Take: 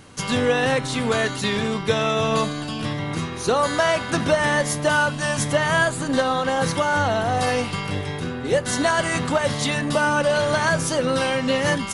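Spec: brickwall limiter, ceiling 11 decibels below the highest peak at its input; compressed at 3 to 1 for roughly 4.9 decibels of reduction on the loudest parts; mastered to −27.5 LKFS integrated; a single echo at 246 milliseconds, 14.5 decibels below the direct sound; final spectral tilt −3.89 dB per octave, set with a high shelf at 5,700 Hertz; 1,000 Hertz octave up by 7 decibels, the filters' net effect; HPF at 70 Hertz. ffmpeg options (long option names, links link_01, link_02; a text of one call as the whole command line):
ffmpeg -i in.wav -af "highpass=70,equalizer=frequency=1000:width_type=o:gain=8.5,highshelf=frequency=5700:gain=4,acompressor=threshold=-17dB:ratio=3,alimiter=limit=-18dB:level=0:latency=1,aecho=1:1:246:0.188,volume=-1dB" out.wav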